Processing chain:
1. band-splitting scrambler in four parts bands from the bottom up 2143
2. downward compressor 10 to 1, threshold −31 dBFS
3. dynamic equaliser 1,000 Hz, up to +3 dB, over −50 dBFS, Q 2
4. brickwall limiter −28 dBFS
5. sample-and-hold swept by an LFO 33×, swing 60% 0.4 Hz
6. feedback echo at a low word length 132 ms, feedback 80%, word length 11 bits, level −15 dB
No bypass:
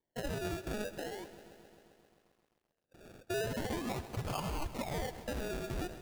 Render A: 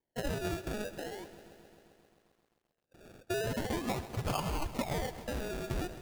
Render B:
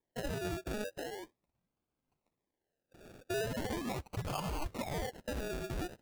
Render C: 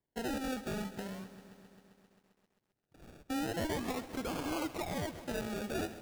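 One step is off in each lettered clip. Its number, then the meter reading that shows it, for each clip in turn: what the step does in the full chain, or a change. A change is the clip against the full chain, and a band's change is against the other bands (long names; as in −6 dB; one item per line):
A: 4, change in crest factor +3.0 dB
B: 6, change in momentary loudness spread −6 LU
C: 1, 125 Hz band −4.5 dB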